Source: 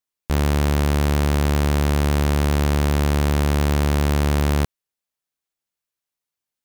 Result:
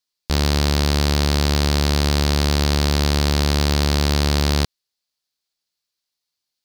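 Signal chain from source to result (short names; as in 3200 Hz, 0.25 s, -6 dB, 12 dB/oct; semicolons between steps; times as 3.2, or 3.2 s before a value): bell 4500 Hz +14.5 dB 0.85 oct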